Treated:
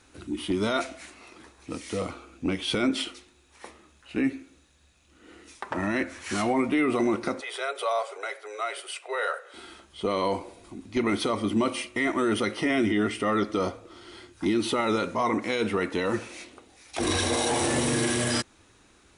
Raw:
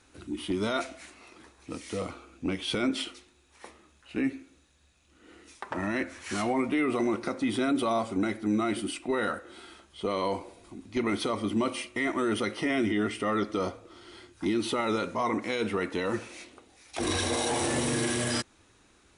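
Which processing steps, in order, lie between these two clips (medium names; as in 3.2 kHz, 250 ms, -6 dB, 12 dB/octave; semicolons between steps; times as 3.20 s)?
7.41–9.54 s: rippled Chebyshev high-pass 410 Hz, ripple 3 dB; trim +3 dB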